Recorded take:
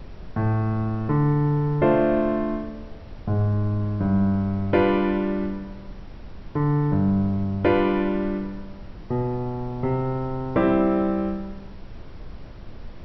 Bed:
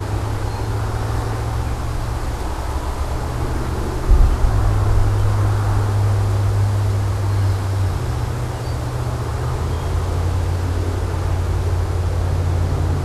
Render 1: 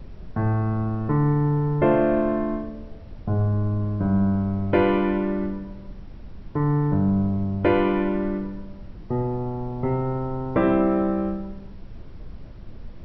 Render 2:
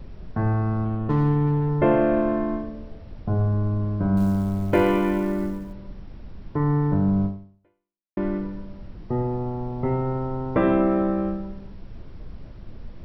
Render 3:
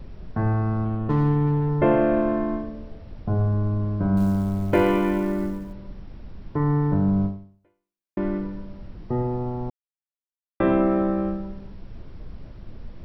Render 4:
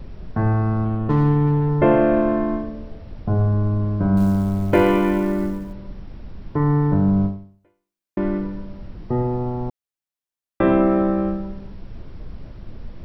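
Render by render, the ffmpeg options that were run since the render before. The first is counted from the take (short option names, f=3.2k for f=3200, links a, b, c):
-af "afftdn=nr=6:nf=-40"
-filter_complex "[0:a]asettb=1/sr,asplit=3[a][b][c];[a]atrim=end=0.854[d];[b]atrim=start=0.85:end=1.69,asetpts=PTS-STARTPTS,afade=t=in:d=0.004:c=qsin,afade=t=out:st=0.836:d=0.004:c=qsin,adynamicsmooth=sensitivity=3.5:basefreq=1.2k[e];[c]atrim=start=1.686[f];[d][e]acrossfade=d=0.004:c1=hsin:c2=qsin[g];[g][f]acrossfade=d=0.004:c1=qsin:c2=hsin,asettb=1/sr,asplit=3[h][i][j];[h]atrim=end=4.174[k];[i]atrim=start=4.17:end=5.73,asetpts=PTS-STARTPTS,afade=t=in:d=0.004:c=qsin,afade=t=out:st=1.556:d=0.004:c=qsin,acrusher=bits=8:mode=log:mix=0:aa=0.000001[l];[j]atrim=start=5.726[m];[k][l]acrossfade=d=0.004:c1=hsin:c2=qsin[n];[n][m]acrossfade=d=0.004:c1=qsin:c2=hsin,asplit=2[o][p];[o]atrim=end=8.17,asetpts=PTS-STARTPTS,afade=t=out:st=7.25:d=0.92:c=exp[q];[p]atrim=start=8.17,asetpts=PTS-STARTPTS,afade=t=in:d=0.004:c=hsin[r];[q][r]concat=n=2:v=0:a=1"
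-filter_complex "[0:a]asplit=3[a][b][c];[a]atrim=end=9.7,asetpts=PTS-STARTPTS,afade=t=out:st=9.696:d=0.004:c=hsin[d];[b]atrim=start=9.7:end=10.6,asetpts=PTS-STARTPTS,volume=0[e];[c]atrim=start=10.6,asetpts=PTS-STARTPTS,afade=t=in:d=0.004:c=hsin[f];[d][e][f]concat=n=3:v=0:a=1"
-af "volume=3.5dB"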